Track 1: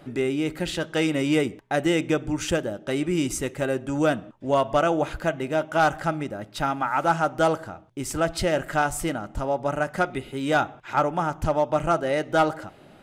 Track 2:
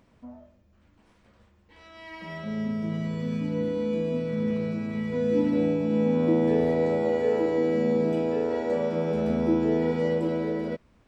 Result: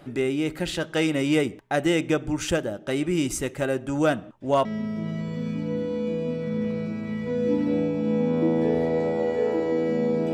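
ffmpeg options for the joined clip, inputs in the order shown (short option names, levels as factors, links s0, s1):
-filter_complex "[0:a]apad=whole_dur=10.33,atrim=end=10.33,atrim=end=4.652[s0];[1:a]atrim=start=2.508:end=8.19[s1];[s0][s1]acrossfade=d=0.004:c1=hsin:c2=hsin"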